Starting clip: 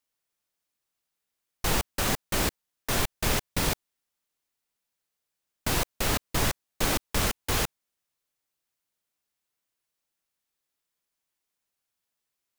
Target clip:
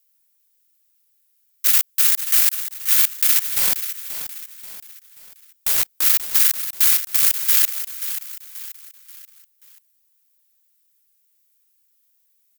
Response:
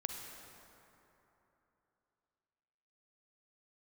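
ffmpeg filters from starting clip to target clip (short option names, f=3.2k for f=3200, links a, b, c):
-filter_complex "[0:a]aeval=exprs='if(lt(val(0),0),0.251*val(0),val(0))':c=same,highpass=f=1.4k:w=0.5412,highpass=f=1.4k:w=1.3066,aemphasis=mode=production:type=50fm,asplit=2[a][b];[b]alimiter=limit=-14.5dB:level=0:latency=1,volume=0.5dB[c];[a][c]amix=inputs=2:normalize=0,asplit=3[d][e][f];[d]afade=t=out:st=3.51:d=0.02[g];[e]aeval=exprs='0.251*(abs(mod(val(0)/0.251+3,4)-2)-1)':c=same,afade=t=in:st=3.51:d=0.02,afade=t=out:st=6.04:d=0.02[h];[f]afade=t=in:st=6.04:d=0.02[i];[g][h][i]amix=inputs=3:normalize=0,aecho=1:1:533|1066|1599|2132:0.282|0.116|0.0474|0.0194,volume=1dB"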